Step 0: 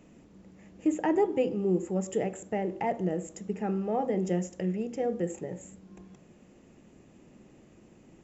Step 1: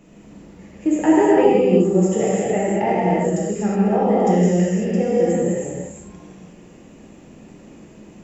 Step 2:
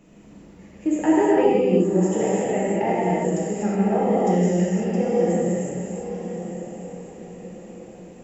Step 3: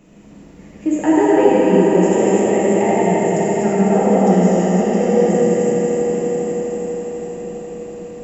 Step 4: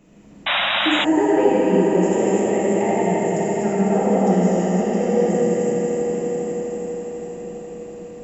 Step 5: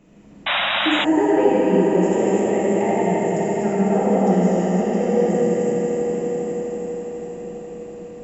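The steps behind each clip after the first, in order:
non-linear reverb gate 0.39 s flat, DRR -7.5 dB; gain +4.5 dB
diffused feedback echo 1.045 s, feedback 42%, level -10.5 dB; gain -3.5 dB
swelling echo 83 ms, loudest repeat 5, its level -10.5 dB; gain +4 dB
painted sound noise, 0.46–1.05, 530–3900 Hz -16 dBFS; gain -4 dB
high shelf 6300 Hz -6 dB

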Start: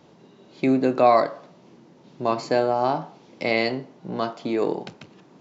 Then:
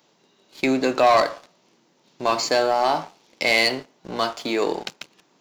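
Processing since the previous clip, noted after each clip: tilt +3.5 dB/oct; sample leveller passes 2; gain -2.5 dB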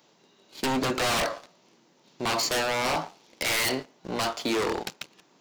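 wavefolder -20.5 dBFS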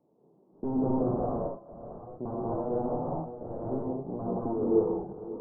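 reverse delay 0.491 s, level -12 dB; Gaussian blur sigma 13 samples; non-linear reverb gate 0.26 s rising, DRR -4.5 dB; gain -2 dB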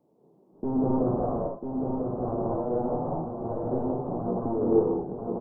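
echo 0.995 s -5 dB; Doppler distortion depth 0.11 ms; gain +2.5 dB

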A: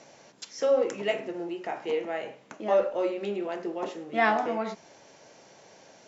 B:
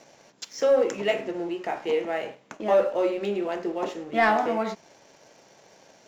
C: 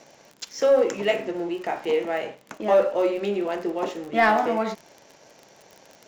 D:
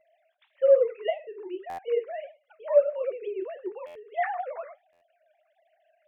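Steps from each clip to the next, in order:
sample leveller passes 1
crackle 33/s -35 dBFS; gain +2 dB
sine-wave speech; flange 1.6 Hz, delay 3.4 ms, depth 7.5 ms, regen -68%; stuck buffer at 1.69/3.86/4.92, samples 512, times 7

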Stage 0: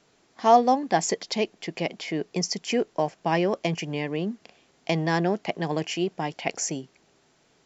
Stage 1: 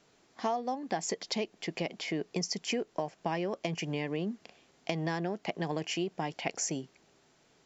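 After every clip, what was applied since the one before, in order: compressor 10:1, threshold -26 dBFS, peak gain reduction 15 dB; gain -2.5 dB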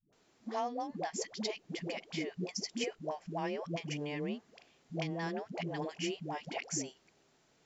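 dispersion highs, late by 0.128 s, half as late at 380 Hz; gain -4 dB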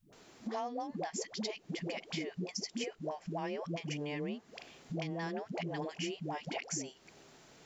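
compressor 3:1, threshold -51 dBFS, peak gain reduction 15 dB; gain +11 dB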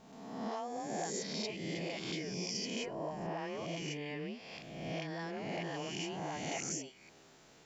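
spectral swells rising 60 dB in 1.27 s; gain -4.5 dB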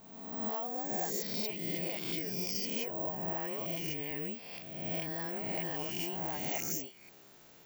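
careless resampling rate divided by 2×, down filtered, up zero stuff

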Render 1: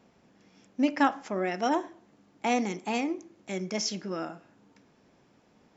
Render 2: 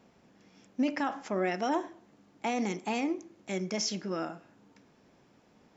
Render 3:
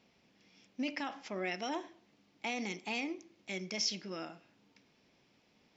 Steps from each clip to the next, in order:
limiter -20 dBFS, peak gain reduction 10 dB
band shelf 3400 Hz +9.5 dB; gain -8.5 dB

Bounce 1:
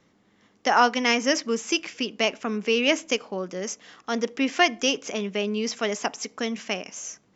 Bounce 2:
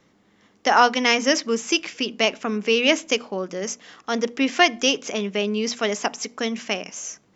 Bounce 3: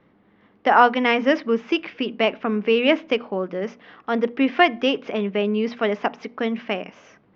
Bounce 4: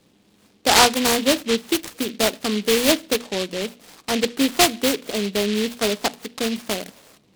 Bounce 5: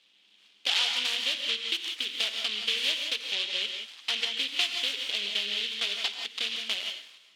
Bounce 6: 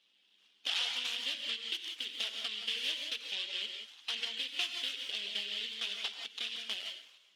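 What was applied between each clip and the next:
notches 60/120/180/240 Hz; dynamic EQ 3800 Hz, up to +4 dB, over -41 dBFS, Q 3.7; gain +3 dB
Gaussian blur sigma 3 samples; gain +2.5 dB
noise-modulated delay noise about 3000 Hz, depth 0.17 ms
compressor 5:1, threshold -23 dBFS, peak gain reduction 13 dB; band-pass 3100 Hz, Q 3.3; non-linear reverb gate 0.2 s rising, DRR 4 dB; gain +7 dB
bin magnitudes rounded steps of 15 dB; gain -7 dB

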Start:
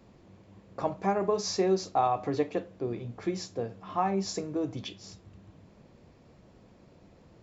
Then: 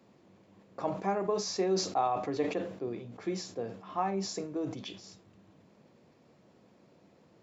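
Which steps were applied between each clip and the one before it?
HPF 160 Hz 12 dB/oct; sustainer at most 90 dB/s; gain -3.5 dB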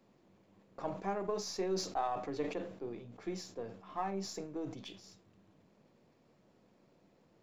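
half-wave gain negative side -3 dB; gain -4.5 dB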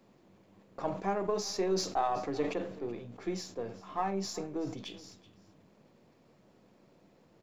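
echo 0.379 s -20 dB; gain +4.5 dB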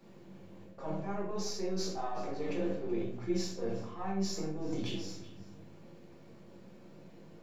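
reverse; compressor 6:1, threshold -41 dBFS, peak gain reduction 14.5 dB; reverse; reverb RT60 0.60 s, pre-delay 5 ms, DRR -4.5 dB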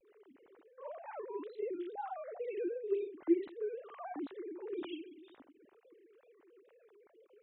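sine-wave speech; wow and flutter 140 cents; gain -4.5 dB

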